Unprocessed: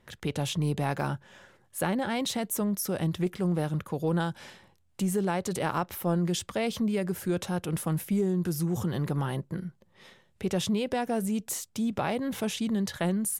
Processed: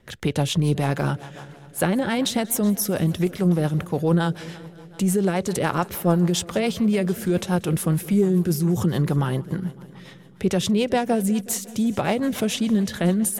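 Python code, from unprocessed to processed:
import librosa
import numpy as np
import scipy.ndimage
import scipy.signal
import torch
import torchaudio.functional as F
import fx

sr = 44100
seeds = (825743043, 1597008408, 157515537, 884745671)

y = fx.echo_heads(x, sr, ms=184, heads='first and second', feedback_pct=59, wet_db=-22.5)
y = fx.rotary(y, sr, hz=7.0)
y = y * librosa.db_to_amplitude(9.0)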